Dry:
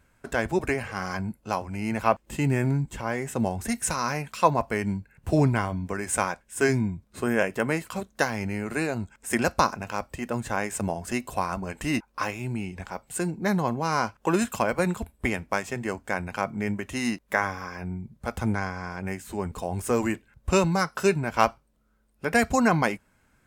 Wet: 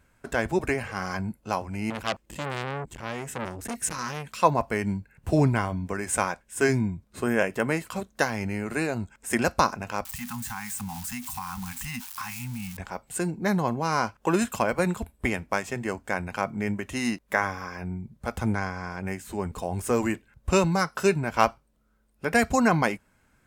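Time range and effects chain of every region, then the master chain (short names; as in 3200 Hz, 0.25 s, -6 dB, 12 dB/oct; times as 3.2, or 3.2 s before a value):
1.9–4.4 gate with hold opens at -43 dBFS, closes at -49 dBFS + bell 880 Hz -3 dB 1.2 oct + core saturation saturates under 3600 Hz
10.05–12.77 switching spikes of -27 dBFS + Chebyshev band-stop 250–770 Hz, order 5 + compressor 5:1, threshold -30 dBFS
whole clip: dry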